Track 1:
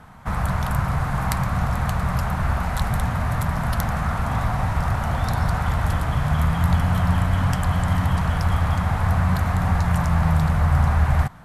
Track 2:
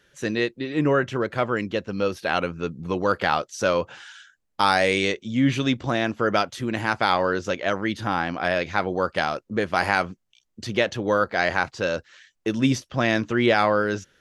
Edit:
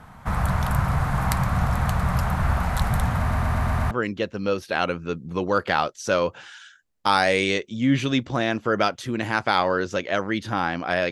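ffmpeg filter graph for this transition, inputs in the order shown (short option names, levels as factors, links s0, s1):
-filter_complex "[0:a]apad=whole_dur=11.11,atrim=end=11.11,asplit=6[s0][s1][s2][s3][s4][s5];[s0]atrim=end=3.312[s6];[s1]atrim=start=3.188:end=3.312[s7];[s2]atrim=start=3.188:end=3.312[s8];[s3]atrim=start=3.188:end=3.312[s9];[s4]atrim=start=3.188:end=3.312[s10];[s5]atrim=start=3.188:end=3.312[s11];[1:a]atrim=start=1.448:end=8.65[s12];[s6][s7]acrossfade=d=0.004:c1=hsin:c2=hsin[s13];[s13][s8]acrossfade=d=0.004:c1=hsin:c2=hsin[s14];[s14][s9]acrossfade=d=0.004:c1=hsin:c2=hsin[s15];[s15][s10]acrossfade=d=0.004:c1=hsin:c2=hsin[s16];[s16][s11]acrossfade=d=0.004:c1=hsin:c2=hsin[s17];[s17][s12]acrossfade=d=0.004:c1=hsin:c2=hsin"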